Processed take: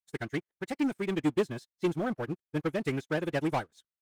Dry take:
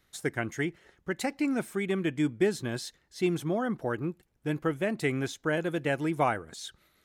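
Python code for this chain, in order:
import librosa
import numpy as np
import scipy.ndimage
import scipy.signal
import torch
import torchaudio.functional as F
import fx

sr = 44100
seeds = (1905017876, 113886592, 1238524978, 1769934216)

y = fx.leveller(x, sr, passes=3)
y = fx.stretch_vocoder(y, sr, factor=0.57)
y = fx.upward_expand(y, sr, threshold_db=-37.0, expansion=2.5)
y = y * librosa.db_to_amplitude(-4.5)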